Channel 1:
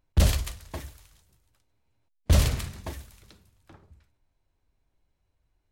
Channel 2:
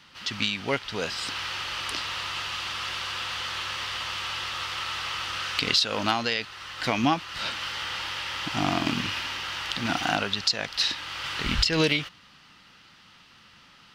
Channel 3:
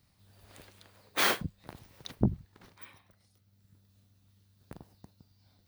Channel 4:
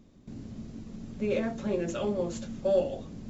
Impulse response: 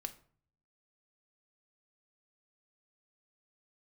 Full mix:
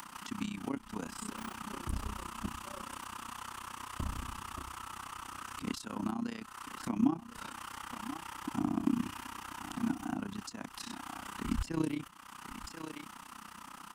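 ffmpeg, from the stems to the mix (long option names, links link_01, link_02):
-filter_complex "[0:a]alimiter=limit=-17.5dB:level=0:latency=1:release=316,adelay=1700,volume=-4.5dB[link_01];[1:a]highshelf=frequency=6500:width_type=q:width=1.5:gain=12.5,acompressor=mode=upward:threshold=-37dB:ratio=2.5,volume=-1dB,asplit=2[link_02][link_03];[link_03]volume=-15.5dB[link_04];[2:a]adelay=200,volume=-10.5dB[link_05];[3:a]volume=-14dB[link_06];[link_04]aecho=0:1:1041:1[link_07];[link_01][link_02][link_05][link_06][link_07]amix=inputs=5:normalize=0,equalizer=frequency=125:width_type=o:width=1:gain=-11,equalizer=frequency=250:width_type=o:width=1:gain=10,equalizer=frequency=500:width_type=o:width=1:gain=-8,equalizer=frequency=1000:width_type=o:width=1:gain=12,equalizer=frequency=2000:width_type=o:width=1:gain=-4,equalizer=frequency=4000:width_type=o:width=1:gain=-6,acrossover=split=320[link_08][link_09];[link_09]acompressor=threshold=-39dB:ratio=6[link_10];[link_08][link_10]amix=inputs=2:normalize=0,tremolo=f=31:d=0.889"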